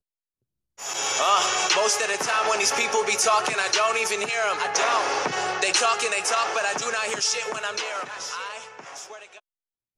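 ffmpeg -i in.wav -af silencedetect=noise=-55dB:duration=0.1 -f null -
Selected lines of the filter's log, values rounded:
silence_start: 0.00
silence_end: 0.78 | silence_duration: 0.78
silence_start: 9.40
silence_end: 9.98 | silence_duration: 0.58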